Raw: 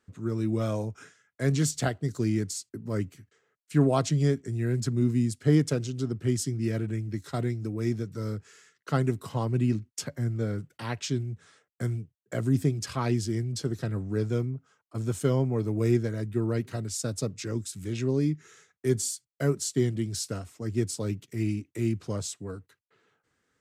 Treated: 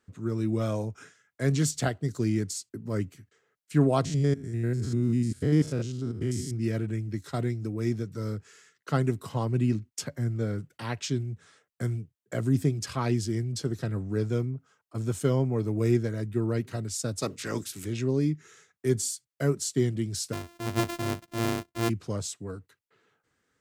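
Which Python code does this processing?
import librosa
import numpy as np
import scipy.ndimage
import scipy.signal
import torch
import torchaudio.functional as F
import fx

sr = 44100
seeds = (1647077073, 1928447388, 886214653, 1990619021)

y = fx.spec_steps(x, sr, hold_ms=100, at=(4.04, 6.52), fade=0.02)
y = fx.spec_clip(y, sr, under_db=19, at=(17.21, 17.84), fade=0.02)
y = fx.sample_sort(y, sr, block=128, at=(20.32, 21.88), fade=0.02)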